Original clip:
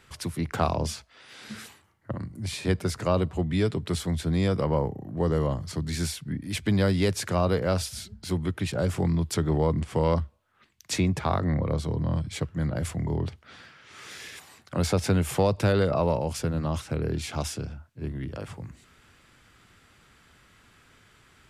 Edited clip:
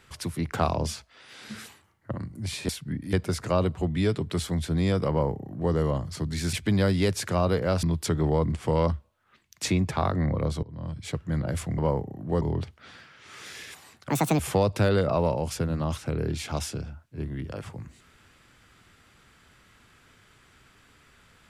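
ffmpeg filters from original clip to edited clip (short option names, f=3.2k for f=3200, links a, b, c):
-filter_complex "[0:a]asplit=10[a][b][c][d][e][f][g][h][i][j];[a]atrim=end=2.692[k];[b]atrim=start=6.088:end=6.532[l];[c]atrim=start=2.688:end=6.092[m];[d]atrim=start=6.528:end=7.832[n];[e]atrim=start=9.108:end=11.91,asetpts=PTS-STARTPTS,afade=t=out:st=2.798:d=0.004:c=hsin:silence=0.0668344[o];[f]atrim=start=11.91:end=13.062,asetpts=PTS-STARTPTS,afade=t=in:d=0.61:silence=0.0668344[p];[g]atrim=start=4.658:end=5.292[q];[h]atrim=start=13.058:end=14.754[r];[i]atrim=start=14.75:end=15.23,asetpts=PTS-STARTPTS,asetrate=72324,aresample=44100,atrim=end_sample=12907,asetpts=PTS-STARTPTS[s];[j]atrim=start=15.226[t];[k][l]acrossfade=d=0.004:c1=hsin:c2=hsin[u];[u][m]acrossfade=d=0.004:c1=hsin:c2=hsin[v];[v][n]acrossfade=d=0.004:c1=hsin:c2=hsin[w];[o][p]concat=n=2:v=0:a=1[x];[w][x]acrossfade=d=0.004:c1=hsin:c2=hsin[y];[y][q]acrossfade=d=0.004:c1=hsin:c2=hsin[z];[z][r]acrossfade=d=0.004:c1=hsin:c2=hsin[aa];[aa][s]acrossfade=d=0.004:c1=hsin:c2=hsin[ab];[ab][t]acrossfade=d=0.004:c1=hsin:c2=hsin"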